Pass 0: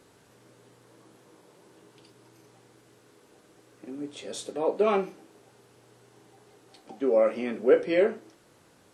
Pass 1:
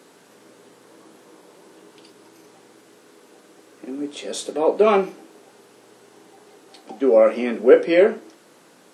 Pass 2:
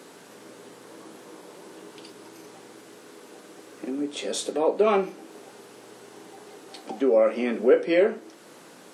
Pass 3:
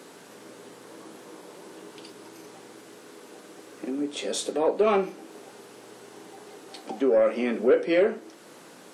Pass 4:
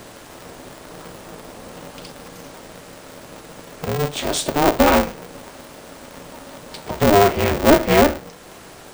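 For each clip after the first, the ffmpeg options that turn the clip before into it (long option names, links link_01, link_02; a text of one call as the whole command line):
ffmpeg -i in.wav -af "highpass=frequency=180:width=0.5412,highpass=frequency=180:width=1.3066,volume=8dB" out.wav
ffmpeg -i in.wav -af "acompressor=threshold=-36dB:ratio=1.5,volume=3.5dB" out.wav
ffmpeg -i in.wav -af "asoftclip=type=tanh:threshold=-11.5dB" out.wav
ffmpeg -i in.wav -af "aeval=exprs='val(0)*sgn(sin(2*PI*150*n/s))':channel_layout=same,volume=7.5dB" out.wav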